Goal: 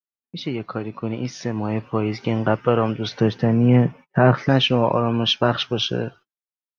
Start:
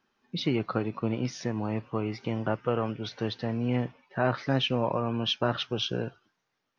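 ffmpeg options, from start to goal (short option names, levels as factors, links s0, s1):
-filter_complex "[0:a]agate=range=0.0178:threshold=0.00316:ratio=16:detection=peak,dynaudnorm=f=650:g=5:m=3.76,asettb=1/sr,asplit=3[s0][s1][s2];[s0]atrim=end=3.204[s3];[s1]atrim=start=3.2:end=4.49,asetpts=PTS-STARTPTS,afade=t=in:d=0.004:c=qsin,afade=t=out:st=1.286:d=0.004:c=qsin,equalizer=f=160:t=o:w=0.67:g=11,equalizer=f=400:t=o:w=0.67:g=3,equalizer=f=4000:t=o:w=0.67:g=-11[s4];[s2]atrim=start=4.486[s5];[s3][s4]acrossfade=d=0.004:c1=hsin:c2=qsin[s6];[s6][s5]acrossfade=d=0.004:c1=qsin:c2=hsin"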